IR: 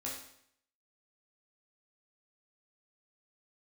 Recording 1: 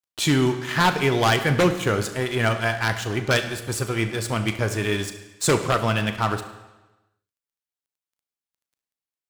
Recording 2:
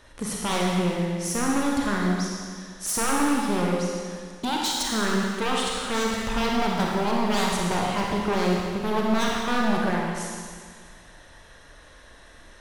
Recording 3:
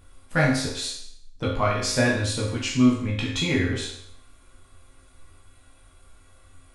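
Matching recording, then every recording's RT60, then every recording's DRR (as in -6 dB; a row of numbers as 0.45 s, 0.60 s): 3; 1.1 s, 1.9 s, 0.65 s; 8.5 dB, -2.0 dB, -5.0 dB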